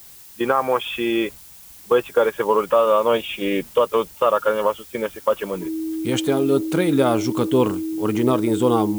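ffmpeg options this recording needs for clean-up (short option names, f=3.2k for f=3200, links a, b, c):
-af "bandreject=f=320:w=30,afftdn=nr=21:nf=-43"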